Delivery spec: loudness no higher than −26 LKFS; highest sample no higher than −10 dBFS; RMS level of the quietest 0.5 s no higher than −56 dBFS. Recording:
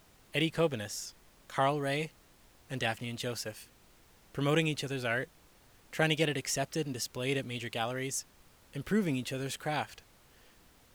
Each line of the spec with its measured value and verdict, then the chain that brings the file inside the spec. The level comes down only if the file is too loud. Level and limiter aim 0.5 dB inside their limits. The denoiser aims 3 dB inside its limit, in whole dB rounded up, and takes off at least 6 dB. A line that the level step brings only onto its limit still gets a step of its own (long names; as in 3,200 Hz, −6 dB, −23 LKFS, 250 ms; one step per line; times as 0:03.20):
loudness −33.5 LKFS: in spec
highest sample −13.5 dBFS: in spec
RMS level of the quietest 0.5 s −61 dBFS: in spec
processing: no processing needed